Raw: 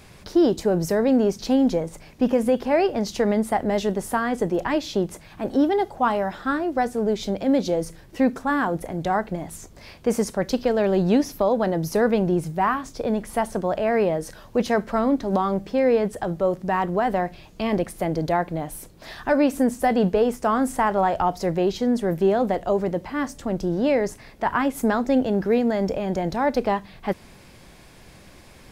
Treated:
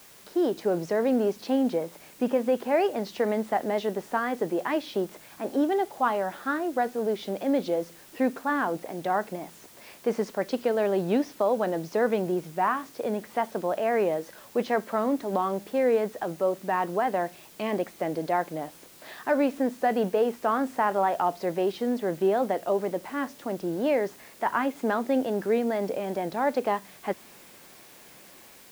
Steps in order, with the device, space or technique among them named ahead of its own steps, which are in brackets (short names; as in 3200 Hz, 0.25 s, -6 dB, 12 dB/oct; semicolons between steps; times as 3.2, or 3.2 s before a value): dictaphone (BPF 260–3600 Hz; AGC gain up to 4.5 dB; wow and flutter; white noise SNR 25 dB); gain -7.5 dB